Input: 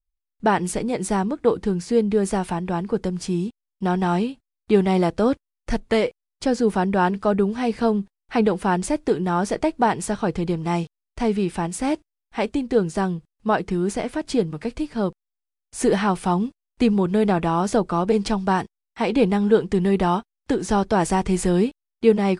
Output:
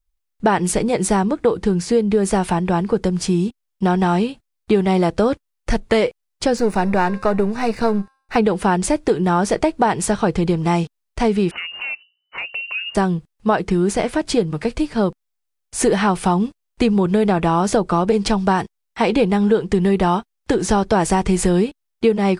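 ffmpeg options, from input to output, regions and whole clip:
-filter_complex "[0:a]asettb=1/sr,asplit=3[s0][s1][s2];[s0]atrim=end=6.574[s3];[s1]atrim=start=6.57:end=8.36,asetpts=PTS-STARTPTS,afade=t=in:d=0.004:c=qsin,afade=t=out:st=1.786:d=0.004:c=qsin,aeval=exprs='if(lt(val(0),0),0.447*val(0),val(0))':c=same,asuperstop=centerf=3200:order=4:qfactor=5.9,bandreject=f=266.7:t=h:w=4,bandreject=f=533.4:t=h:w=4,bandreject=f=800.1:t=h:w=4,bandreject=f=1066.8:t=h:w=4,bandreject=f=1333.5:t=h:w=4,bandreject=f=1600.2:t=h:w=4,bandreject=f=1866.9:t=h:w=4,bandreject=f=2133.6:t=h:w=4,bandreject=f=2400.3:t=h:w=4,bandreject=f=2667:t=h:w=4,bandreject=f=2933.7:t=h:w=4,bandreject=f=3200.4:t=h:w=4,bandreject=f=3467.1:t=h:w=4,bandreject=f=3733.8:t=h:w=4,bandreject=f=4000.5:t=h:w=4,bandreject=f=4267.2:t=h:w=4,bandreject=f=4533.9:t=h:w=4,bandreject=f=4800.6:t=h:w=4,bandreject=f=5067.3:t=h:w=4,bandreject=f=5334:t=h:w=4,bandreject=f=5600.7:t=h:w=4,bandreject=f=5867.4:t=h:w=4,bandreject=f=6134.1:t=h:w=4,bandreject=f=6400.8:t=h:w=4,bandreject=f=6667.5:t=h:w=4,bandreject=f=6934.2:t=h:w=4,bandreject=f=7200.9:t=h:w=4,bandreject=f=7467.6:t=h:w=4,bandreject=f=7734.3:t=h:w=4,bandreject=f=8001:t=h:w=4,bandreject=f=8267.7:t=h:w=4,bandreject=f=8534.4:t=h:w=4,bandreject=f=8801.1:t=h:w=4,bandreject=f=9067.8:t=h:w=4,bandreject=f=9334.5:t=h:w=4,bandreject=f=9601.2:t=h:w=4,bandreject=f=9867.9:t=h:w=4,bandreject=f=10134.6:t=h:w=4,bandreject=f=10401.3:t=h:w=4[s4];[s2]atrim=start=8.356[s5];[s3][s4]acrossfade=d=0.004:c1=hsin:c2=qsin[s6];[s6][s5]acrossfade=d=0.004:c1=qsin:c2=hsin,asettb=1/sr,asplit=3[s7][s8][s9];[s7]atrim=end=11.514[s10];[s8]atrim=start=11.51:end=12.95,asetpts=PTS-STARTPTS,afade=t=in:d=0.004:c=qsin,afade=t=out:st=1.436:d=0.004:c=qsin,bandreject=f=60:t=h:w=6,bandreject=f=120:t=h:w=6,bandreject=f=180:t=h:w=6,bandreject=f=240:t=h:w=6,lowpass=f=2600:t=q:w=0.5098,lowpass=f=2600:t=q:w=0.6013,lowpass=f=2600:t=q:w=0.9,lowpass=f=2600:t=q:w=2.563,afreqshift=-3000,acompressor=threshold=0.0158:ratio=3:attack=3.2:release=140:knee=1:detection=peak[s11];[s9]atrim=start=12.946[s12];[s10][s11]acrossfade=d=0.004:c1=hsin:c2=qsin[s13];[s13][s12]acrossfade=d=0.004:c1=qsin:c2=hsin,equalizer=f=260:w=6.4:g=-7,acompressor=threshold=0.0891:ratio=4,volume=2.51"

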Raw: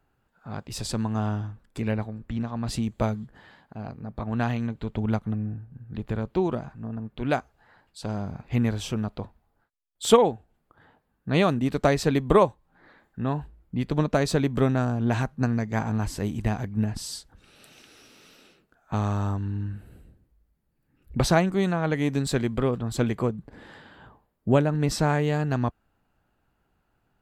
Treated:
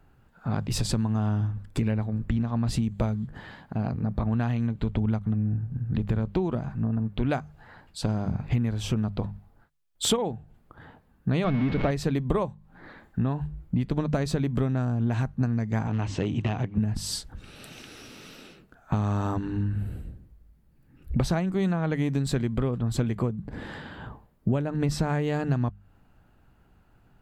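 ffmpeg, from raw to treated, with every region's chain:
-filter_complex "[0:a]asettb=1/sr,asplit=3[s0][s1][s2];[s0]atrim=end=11.444[s3];[s1]atrim=start=11.44:end=11.91,asetpts=PTS-STARTPTS,afade=t=in:d=0.004:c=qsin,afade=t=out:st=0.466:d=0.004:c=qsin,aeval=exprs='val(0)+0.5*0.0841*sgn(val(0))':c=same,lowpass=f=3600:w=0.5412,lowpass=f=3600:w=1.3066,aeval=exprs='val(0)+0.0158*sin(2*PI*2200*n/s)':c=same[s4];[s2]atrim=start=11.906[s5];[s3][s4]acrossfade=d=0.004:c1=hsin:c2=qsin[s6];[s6][s5]acrossfade=d=0.004:c1=qsin:c2=hsin,asettb=1/sr,asplit=3[s7][s8][s9];[s7]atrim=end=15.874[s10];[s8]atrim=start=15.87:end=16.78,asetpts=PTS-STARTPTS,afade=t=in:d=0.004:c=qsin,afade=t=out:st=0.906:d=0.004:c=qsin,aeval=exprs='0.119*(abs(mod(val(0)/0.119+3,4)-2)-1)':c=same,highpass=130,equalizer=f=210:t=q:w=4:g=-7,equalizer=f=1600:t=q:w=4:g=-4,equalizer=f=2800:t=q:w=4:g=6,equalizer=f=4800:t=q:w=4:g=-8,lowpass=f=6000:w=0.5412,lowpass=f=6000:w=1.3066[s11];[s9]atrim=start=16.776[s12];[s10][s11]acrossfade=d=0.004:c1=hsin:c2=qsin[s13];[s13][s12]acrossfade=d=0.004:c1=qsin:c2=hsin,bass=f=250:g=7,treble=f=4000:g=-2,bandreject=f=50:t=h:w=6,bandreject=f=100:t=h:w=6,bandreject=f=150:t=h:w=6,bandreject=f=200:t=h:w=6,acompressor=threshold=0.0316:ratio=6,volume=2.24"

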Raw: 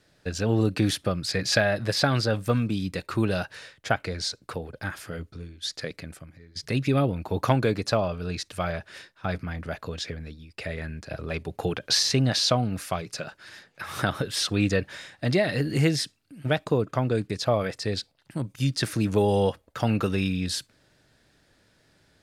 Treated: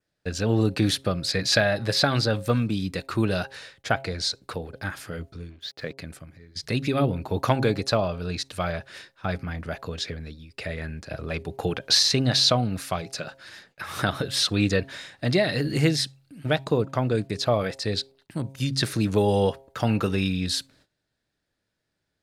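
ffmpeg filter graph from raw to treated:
-filter_complex "[0:a]asettb=1/sr,asplit=3[s0][s1][s2];[s0]atrim=end=5.504[s3];[s1]atrim=start=5.5:end=5.98,asetpts=PTS-STARTPTS,afade=t=in:d=0.004:c=qsin,afade=t=out:st=0.476:d=0.004:c=qsin,lowpass=3000,aeval=exprs='sgn(val(0))*max(abs(val(0))-0.00133,0)':c=same[s4];[s2]atrim=start=5.976[s5];[s3][s4]acrossfade=d=0.004:c1=hsin:c2=qsin[s6];[s6][s5]acrossfade=d=0.004:c1=qsin:c2=hsin,bandreject=f=134.6:t=h:w=4,bandreject=f=269.2:t=h:w=4,bandreject=f=403.8:t=h:w=4,bandreject=f=538.4:t=h:w=4,bandreject=f=673:t=h:w=4,bandreject=f=807.6:t=h:w=4,bandreject=f=942.2:t=h:w=4,agate=range=0.126:threshold=0.00126:ratio=16:detection=peak,adynamicequalizer=threshold=0.00562:dfrequency=4000:dqfactor=4.4:tfrequency=4000:tqfactor=4.4:attack=5:release=100:ratio=0.375:range=3:mode=boostabove:tftype=bell,volume=1.12"

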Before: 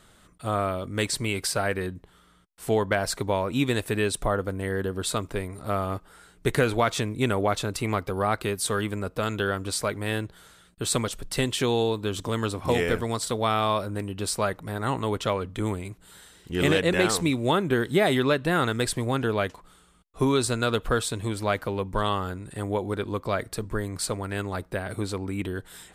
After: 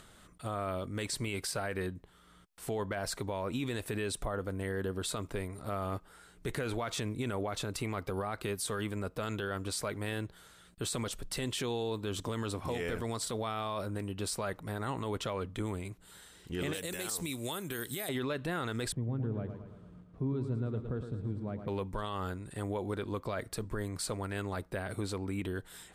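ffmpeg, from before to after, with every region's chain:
-filter_complex "[0:a]asettb=1/sr,asplit=3[s0][s1][s2];[s0]atrim=end=16.734[s3];[s1]atrim=start=16.73:end=18.09,asetpts=PTS-STARTPTS,afade=t=in:d=0.004:c=qsin,afade=t=out:st=1.356:d=0.004:c=qsin,aemphasis=mode=production:type=75fm,acrossover=split=1000|5500[s4][s5][s6];[s4]acompressor=threshold=0.0282:ratio=4[s7];[s5]acompressor=threshold=0.0224:ratio=4[s8];[s6]acompressor=threshold=0.0631:ratio=4[s9];[s7][s8][s9]amix=inputs=3:normalize=0[s10];[s2]atrim=start=18.086[s11];[s3][s10]acrossfade=d=0.004:c1=hsin:c2=qsin[s12];[s12][s11]acrossfade=d=0.004:c1=qsin:c2=hsin,asettb=1/sr,asplit=3[s13][s14][s15];[s13]atrim=end=18.924[s16];[s14]atrim=start=18.92:end=21.68,asetpts=PTS-STARTPTS,afade=t=in:d=0.004:c=qsin,afade=t=out:st=2.756:d=0.004:c=qsin,aeval=exprs='val(0)+0.5*0.015*sgn(val(0))':c=same,bandpass=f=140:t=q:w=1.1,aecho=1:1:112|224|336|448|560|672|784:0.376|0.21|0.118|0.066|0.037|0.0207|0.0116,atrim=end_sample=121716[s17];[s15]atrim=start=21.676[s18];[s16][s17]acrossfade=d=0.004:c1=hsin:c2=qsin[s19];[s19][s18]acrossfade=d=0.004:c1=qsin:c2=hsin,alimiter=limit=0.0891:level=0:latency=1:release=30,acompressor=mode=upward:threshold=0.00501:ratio=2.5,volume=0.562"

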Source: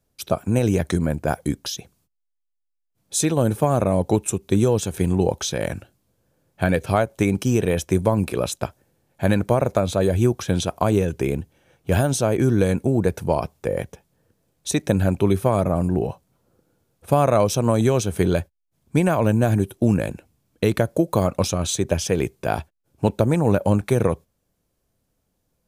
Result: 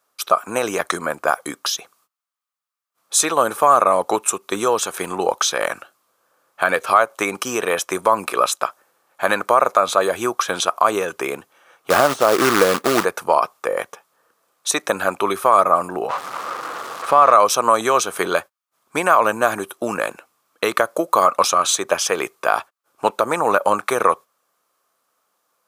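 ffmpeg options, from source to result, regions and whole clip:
-filter_complex "[0:a]asettb=1/sr,asplit=3[s0][s1][s2];[s0]atrim=end=11.904[s3];[s1]atrim=start=11.9:end=13.05,asetpts=PTS-STARTPTS,afade=t=in:d=0.004:c=qsin,afade=t=out:st=1.146:d=0.004:c=qsin,tiltshelf=f=1200:g=7,acrossover=split=3300[s4][s5];[s5]acompressor=threshold=0.00631:ratio=4:attack=1:release=60[s6];[s4][s6]amix=inputs=2:normalize=0,acrusher=bits=4:mode=log:mix=0:aa=0.000001[s7];[s2]atrim=start=13.046[s8];[s3][s7]acrossfade=d=0.004:c1=hsin:c2=qsin[s9];[s9][s8]acrossfade=d=0.004:c1=qsin:c2=hsin,asettb=1/sr,asplit=3[s10][s11][s12];[s10]atrim=end=16.094[s13];[s11]atrim=start=16.09:end=17.33,asetpts=PTS-STARTPTS,afade=t=in:d=0.004:c=qsin,afade=t=out:st=1.236:d=0.004:c=qsin,aeval=exprs='val(0)+0.5*0.0376*sgn(val(0))':c=same,aemphasis=mode=reproduction:type=50fm[s14];[s12]atrim=start=17.326[s15];[s13][s14]acrossfade=d=0.004:c1=hsin:c2=qsin[s16];[s16][s15]acrossfade=d=0.004:c1=qsin:c2=hsin,highpass=610,equalizer=f=1200:w=2.9:g=15,alimiter=level_in=2.37:limit=0.891:release=50:level=0:latency=1,volume=0.891"

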